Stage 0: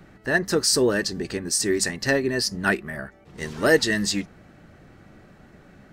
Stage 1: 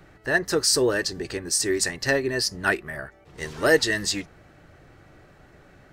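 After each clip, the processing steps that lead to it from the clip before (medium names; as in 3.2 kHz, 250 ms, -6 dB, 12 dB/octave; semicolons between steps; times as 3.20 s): peaking EQ 210 Hz -11 dB 0.57 oct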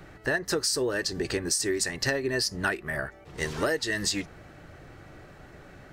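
compression 16:1, threshold -27 dBFS, peak gain reduction 15.5 dB; trim +3.5 dB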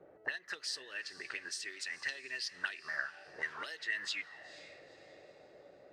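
auto-wah 450–3500 Hz, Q 3.6, up, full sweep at -23 dBFS; echo that smears into a reverb 480 ms, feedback 40%, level -15.5 dB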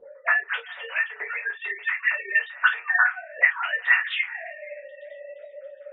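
formants replaced by sine waves; reverberation, pre-delay 3 ms, DRR -7 dB; trim +8.5 dB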